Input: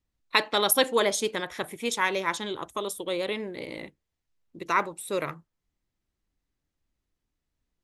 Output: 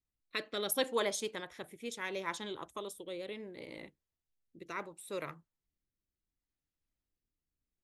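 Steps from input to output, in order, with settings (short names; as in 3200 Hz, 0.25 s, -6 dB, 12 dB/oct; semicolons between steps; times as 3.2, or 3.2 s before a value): rotary speaker horn 0.7 Hz; gain -8.5 dB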